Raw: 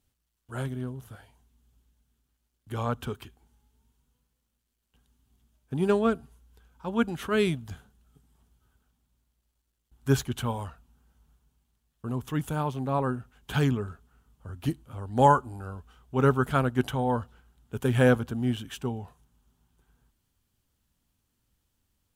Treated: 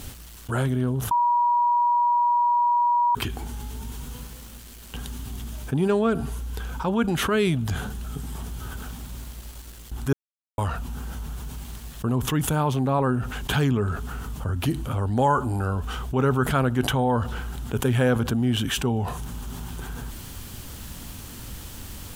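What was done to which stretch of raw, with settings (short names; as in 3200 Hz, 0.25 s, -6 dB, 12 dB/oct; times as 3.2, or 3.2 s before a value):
1.11–3.15 bleep 961 Hz -20 dBFS
10.13–10.58 mute
whole clip: fast leveller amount 70%; gain -3 dB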